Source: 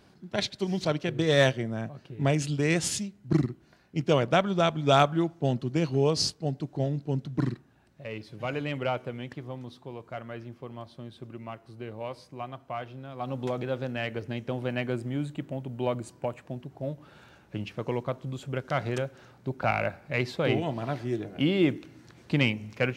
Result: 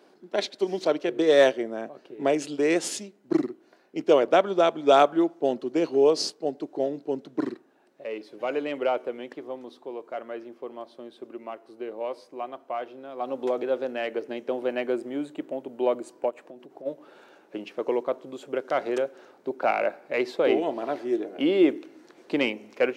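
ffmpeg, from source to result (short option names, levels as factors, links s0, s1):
-filter_complex "[0:a]asplit=3[s0][s1][s2];[s0]afade=t=out:st=16.29:d=0.02[s3];[s1]acompressor=threshold=0.0112:ratio=12:attack=3.2:release=140:knee=1:detection=peak,afade=t=in:st=16.29:d=0.02,afade=t=out:st=16.85:d=0.02[s4];[s2]afade=t=in:st=16.85:d=0.02[s5];[s3][s4][s5]amix=inputs=3:normalize=0,highpass=f=350:w=0.5412,highpass=f=350:w=1.3066,tiltshelf=f=640:g=7,volume=1.78"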